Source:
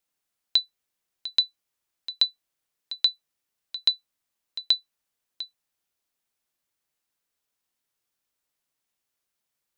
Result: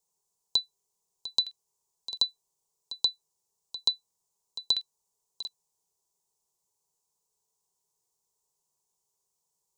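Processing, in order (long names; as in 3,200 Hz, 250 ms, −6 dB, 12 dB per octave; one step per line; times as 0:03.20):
drawn EQ curve 120 Hz 0 dB, 180 Hz +5 dB, 270 Hz −16 dB, 410 Hz +9 dB, 590 Hz −4 dB, 970 Hz +8 dB, 1,600 Hz −26 dB, 7,000 Hz +9 dB, 12,000 Hz −1 dB
regular buffer underruns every 0.66 s, samples 2,048, repeat, from 0:00.76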